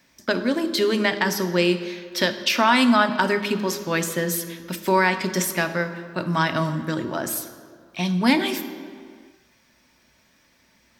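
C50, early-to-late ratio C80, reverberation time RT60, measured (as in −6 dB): 11.0 dB, 12.0 dB, non-exponential decay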